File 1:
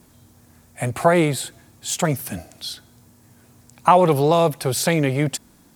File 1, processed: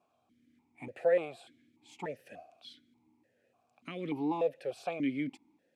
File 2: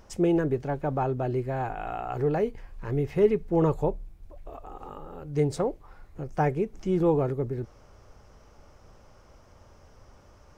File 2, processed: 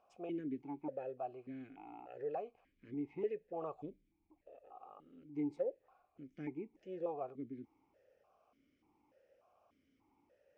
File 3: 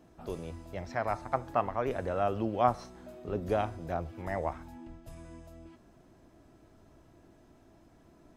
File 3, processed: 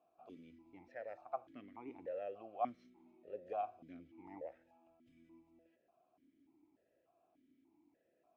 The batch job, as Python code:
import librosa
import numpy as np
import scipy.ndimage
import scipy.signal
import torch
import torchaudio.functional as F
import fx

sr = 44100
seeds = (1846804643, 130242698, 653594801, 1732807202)

y = fx.vowel_held(x, sr, hz=3.4)
y = F.gain(torch.from_numpy(y), -4.5).numpy()